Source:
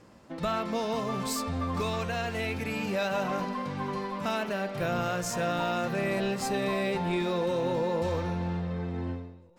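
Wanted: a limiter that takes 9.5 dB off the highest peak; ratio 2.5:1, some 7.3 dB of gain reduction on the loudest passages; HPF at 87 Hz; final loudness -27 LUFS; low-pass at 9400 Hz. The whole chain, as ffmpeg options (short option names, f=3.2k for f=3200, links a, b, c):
-af "highpass=87,lowpass=9.4k,acompressor=threshold=-37dB:ratio=2.5,volume=15.5dB,alimiter=limit=-19dB:level=0:latency=1"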